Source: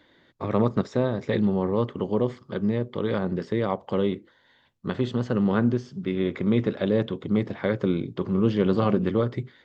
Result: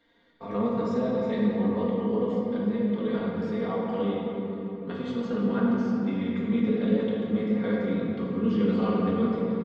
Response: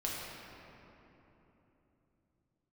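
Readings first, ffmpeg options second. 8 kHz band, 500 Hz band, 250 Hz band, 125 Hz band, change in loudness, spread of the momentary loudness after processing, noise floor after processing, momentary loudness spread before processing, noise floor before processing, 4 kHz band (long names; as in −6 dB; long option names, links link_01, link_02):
can't be measured, −2.5 dB, 0.0 dB, −5.5 dB, −1.5 dB, 7 LU, −38 dBFS, 6 LU, −61 dBFS, −4.5 dB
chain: -filter_complex "[0:a]bandreject=frequency=60:width_type=h:width=6,bandreject=frequency=120:width_type=h:width=6,bandreject=frequency=180:width_type=h:width=6,aecho=1:1:4.3:0.79[link_01];[1:a]atrim=start_sample=2205[link_02];[link_01][link_02]afir=irnorm=-1:irlink=0,volume=-9dB"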